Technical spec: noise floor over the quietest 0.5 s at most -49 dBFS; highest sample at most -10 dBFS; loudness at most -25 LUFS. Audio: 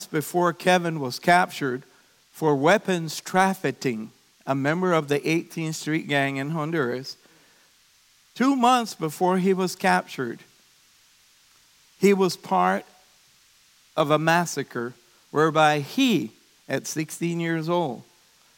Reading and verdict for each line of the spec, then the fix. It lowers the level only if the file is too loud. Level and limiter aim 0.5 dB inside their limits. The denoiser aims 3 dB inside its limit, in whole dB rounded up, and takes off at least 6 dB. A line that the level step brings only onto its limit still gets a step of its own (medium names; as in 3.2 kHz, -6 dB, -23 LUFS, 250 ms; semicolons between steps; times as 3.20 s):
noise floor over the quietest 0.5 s -59 dBFS: pass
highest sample -5.5 dBFS: fail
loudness -23.5 LUFS: fail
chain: trim -2 dB; peak limiter -10.5 dBFS